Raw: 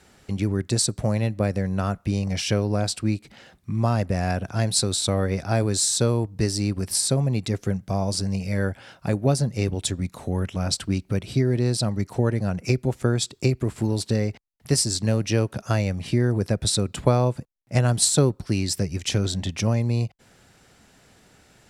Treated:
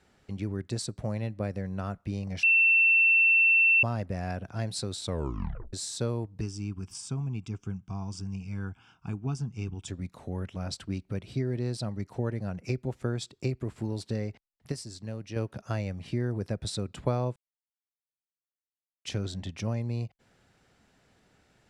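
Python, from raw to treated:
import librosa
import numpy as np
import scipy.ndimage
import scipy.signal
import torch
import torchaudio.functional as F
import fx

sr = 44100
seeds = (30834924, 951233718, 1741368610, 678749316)

y = fx.fixed_phaser(x, sr, hz=2800.0, stages=8, at=(6.41, 9.88))
y = fx.edit(y, sr, fx.bleep(start_s=2.43, length_s=1.4, hz=2690.0, db=-7.5),
    fx.tape_stop(start_s=5.07, length_s=0.66),
    fx.clip_gain(start_s=14.72, length_s=0.64, db=-6.5),
    fx.silence(start_s=17.36, length_s=1.69), tone=tone)
y = fx.high_shelf(y, sr, hz=6900.0, db=-11.0)
y = F.gain(torch.from_numpy(y), -9.0).numpy()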